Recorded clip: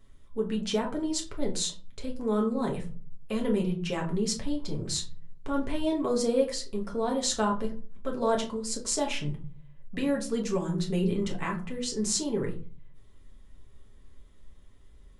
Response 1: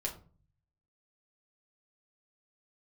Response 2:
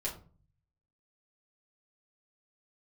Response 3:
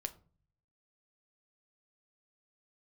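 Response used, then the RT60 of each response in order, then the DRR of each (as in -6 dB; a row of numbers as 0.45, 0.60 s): 1; 0.40, 0.40, 0.40 s; -1.0, -5.0, 8.0 dB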